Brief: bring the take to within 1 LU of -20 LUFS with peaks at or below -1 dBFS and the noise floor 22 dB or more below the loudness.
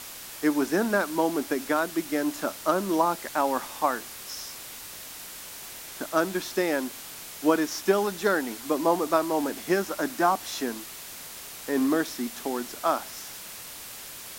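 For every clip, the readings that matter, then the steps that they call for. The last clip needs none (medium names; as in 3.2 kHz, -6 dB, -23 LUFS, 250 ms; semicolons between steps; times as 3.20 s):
noise floor -42 dBFS; noise floor target -49 dBFS; loudness -27.0 LUFS; peak level -9.0 dBFS; loudness target -20.0 LUFS
-> noise reduction 7 dB, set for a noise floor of -42 dBFS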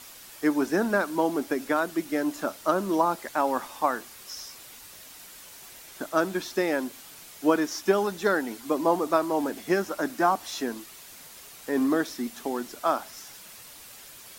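noise floor -47 dBFS; noise floor target -49 dBFS
-> noise reduction 6 dB, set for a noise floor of -47 dBFS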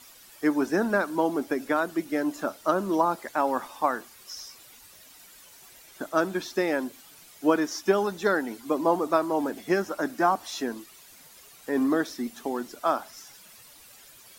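noise floor -52 dBFS; loudness -27.0 LUFS; peak level -9.0 dBFS; loudness target -20.0 LUFS
-> trim +7 dB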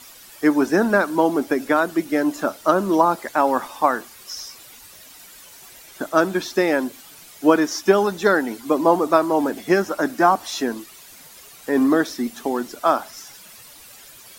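loudness -20.0 LUFS; peak level -2.0 dBFS; noise floor -45 dBFS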